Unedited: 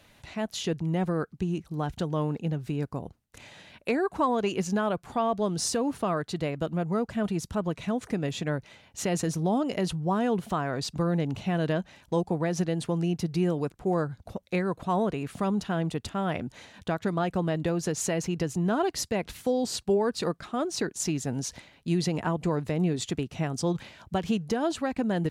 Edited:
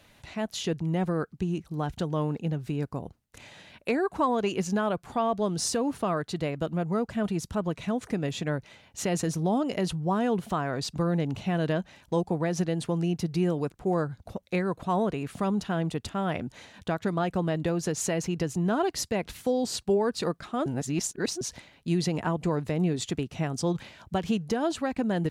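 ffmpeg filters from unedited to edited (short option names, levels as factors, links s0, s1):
-filter_complex "[0:a]asplit=3[s0][s1][s2];[s0]atrim=end=20.662[s3];[s1]atrim=start=20.658:end=21.412,asetpts=PTS-STARTPTS,areverse[s4];[s2]atrim=start=21.408[s5];[s3][s4]acrossfade=d=0.004:c1=hsin:c2=hsin[s6];[s6][s5]acrossfade=d=0.004:c1=hsin:c2=hsin"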